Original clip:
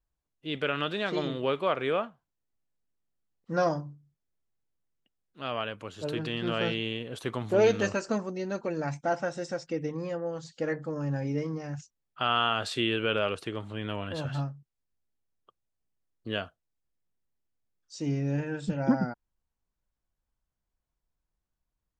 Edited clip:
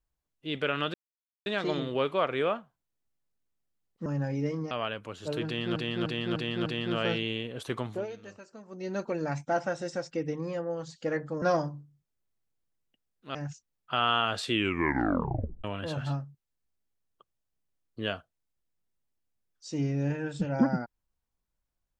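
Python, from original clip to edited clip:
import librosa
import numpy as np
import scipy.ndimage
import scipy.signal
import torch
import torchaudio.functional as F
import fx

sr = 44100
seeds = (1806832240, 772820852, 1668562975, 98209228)

y = fx.edit(x, sr, fx.insert_silence(at_s=0.94, length_s=0.52),
    fx.swap(start_s=3.54, length_s=1.93, other_s=10.98, other_length_s=0.65),
    fx.repeat(start_s=6.22, length_s=0.3, count=5),
    fx.fade_down_up(start_s=7.36, length_s=1.12, db=-19.0, fade_s=0.27),
    fx.tape_stop(start_s=12.8, length_s=1.12), tone=tone)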